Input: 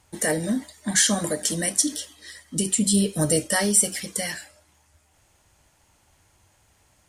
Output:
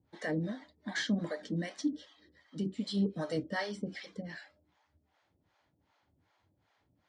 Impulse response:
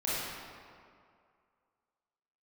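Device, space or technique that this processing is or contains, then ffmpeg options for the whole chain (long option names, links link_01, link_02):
guitar amplifier with harmonic tremolo: -filter_complex "[0:a]acrossover=split=490[link_01][link_02];[link_01]aeval=exprs='val(0)*(1-1/2+1/2*cos(2*PI*2.6*n/s))':channel_layout=same[link_03];[link_02]aeval=exprs='val(0)*(1-1/2-1/2*cos(2*PI*2.6*n/s))':channel_layout=same[link_04];[link_03][link_04]amix=inputs=2:normalize=0,asoftclip=type=tanh:threshold=-13.5dB,highpass=90,equalizer=frequency=170:width_type=q:width=4:gain=3,equalizer=frequency=280:width_type=q:width=4:gain=6,equalizer=frequency=2700:width_type=q:width=4:gain=-7,lowpass=frequency=4100:width=0.5412,lowpass=frequency=4100:width=1.3066,volume=-5.5dB"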